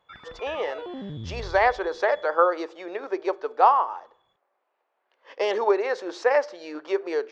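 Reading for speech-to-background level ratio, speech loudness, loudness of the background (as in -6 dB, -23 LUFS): 14.5 dB, -24.5 LUFS, -39.0 LUFS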